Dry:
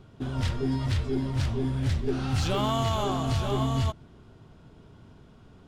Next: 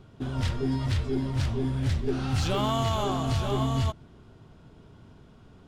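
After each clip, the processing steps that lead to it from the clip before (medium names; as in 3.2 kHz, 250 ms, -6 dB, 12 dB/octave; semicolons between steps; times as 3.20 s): no audible change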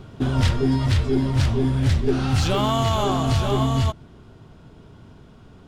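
gain riding within 4 dB 0.5 s; trim +7 dB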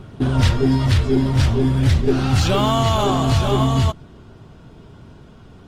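trim +3.5 dB; Opus 24 kbps 48 kHz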